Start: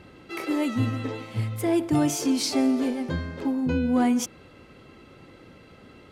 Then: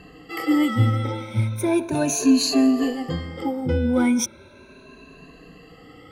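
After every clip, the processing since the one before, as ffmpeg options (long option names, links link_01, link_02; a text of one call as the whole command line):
ffmpeg -i in.wav -af "afftfilt=real='re*pow(10,20/40*sin(2*PI*(1.5*log(max(b,1)*sr/1024/100)/log(2)-(0.36)*(pts-256)/sr)))':imag='im*pow(10,20/40*sin(2*PI*(1.5*log(max(b,1)*sr/1024/100)/log(2)-(0.36)*(pts-256)/sr)))':win_size=1024:overlap=0.75" out.wav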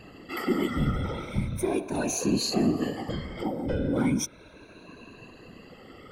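ffmpeg -i in.wav -filter_complex "[0:a]afftfilt=real='hypot(re,im)*cos(2*PI*random(0))':imag='hypot(re,im)*sin(2*PI*random(1))':win_size=512:overlap=0.75,asplit=2[link_01][link_02];[link_02]acompressor=threshold=-35dB:ratio=6,volume=2dB[link_03];[link_01][link_03]amix=inputs=2:normalize=0,volume=-3dB" out.wav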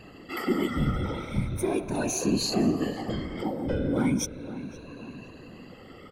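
ffmpeg -i in.wav -filter_complex "[0:a]asplit=2[link_01][link_02];[link_02]adelay=516,lowpass=frequency=1200:poles=1,volume=-12.5dB,asplit=2[link_03][link_04];[link_04]adelay=516,lowpass=frequency=1200:poles=1,volume=0.53,asplit=2[link_05][link_06];[link_06]adelay=516,lowpass=frequency=1200:poles=1,volume=0.53,asplit=2[link_07][link_08];[link_08]adelay=516,lowpass=frequency=1200:poles=1,volume=0.53,asplit=2[link_09][link_10];[link_10]adelay=516,lowpass=frequency=1200:poles=1,volume=0.53[link_11];[link_01][link_03][link_05][link_07][link_09][link_11]amix=inputs=6:normalize=0" out.wav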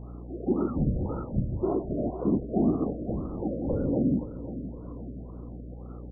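ffmpeg -i in.wav -af "aeval=exprs='val(0)+0.01*(sin(2*PI*60*n/s)+sin(2*PI*2*60*n/s)/2+sin(2*PI*3*60*n/s)/3+sin(2*PI*4*60*n/s)/4+sin(2*PI*5*60*n/s)/5)':channel_layout=same,asuperstop=centerf=3600:order=4:qfactor=0.64,afftfilt=real='re*lt(b*sr/1024,660*pow(1500/660,0.5+0.5*sin(2*PI*1.9*pts/sr)))':imag='im*lt(b*sr/1024,660*pow(1500/660,0.5+0.5*sin(2*PI*1.9*pts/sr)))':win_size=1024:overlap=0.75" out.wav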